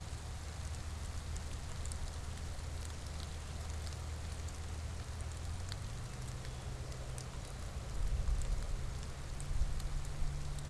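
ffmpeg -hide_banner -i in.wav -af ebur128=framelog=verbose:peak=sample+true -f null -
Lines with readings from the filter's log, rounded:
Integrated loudness:
  I:         -44.0 LUFS
  Threshold: -54.0 LUFS
Loudness range:
  LRA:         2.0 LU
  Threshold: -64.1 LUFS
  LRA low:   -44.7 LUFS
  LRA high:  -42.8 LUFS
Sample peak:
  Peak:      -22.8 dBFS
True peak:
  Peak:      -22.5 dBFS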